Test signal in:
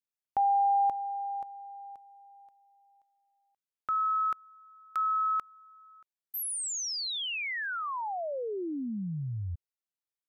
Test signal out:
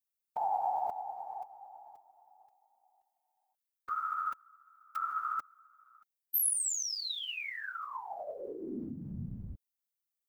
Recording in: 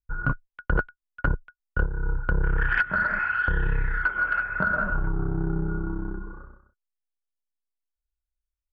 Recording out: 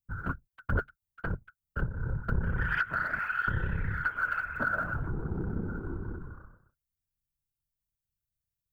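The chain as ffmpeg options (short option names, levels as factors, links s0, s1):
-af "aphaser=in_gain=1:out_gain=1:delay=4.3:decay=0.22:speed=1.3:type=triangular,aemphasis=mode=production:type=50kf,afftfilt=real='hypot(re,im)*cos(2*PI*random(0))':imag='hypot(re,im)*sin(2*PI*random(1))':win_size=512:overlap=0.75,volume=0.841"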